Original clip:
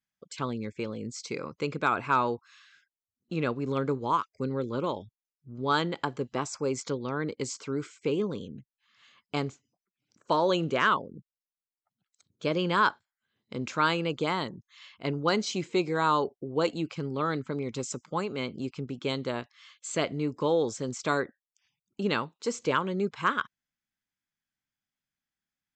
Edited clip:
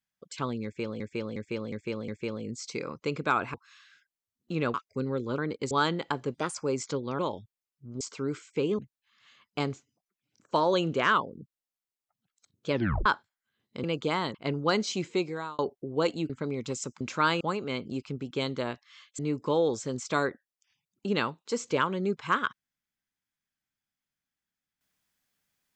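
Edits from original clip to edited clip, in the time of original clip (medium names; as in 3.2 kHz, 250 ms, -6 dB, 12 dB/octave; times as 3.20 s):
0.64–1.00 s: loop, 5 plays
2.10–2.35 s: delete
3.55–4.18 s: delete
4.82–5.64 s: swap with 7.16–7.49 s
6.27–6.52 s: speed 121%
8.27–8.55 s: delete
12.47 s: tape stop 0.35 s
13.60–14.00 s: move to 18.09 s
14.51–14.94 s: delete
15.69–16.18 s: fade out
16.89–17.38 s: delete
19.87–20.13 s: delete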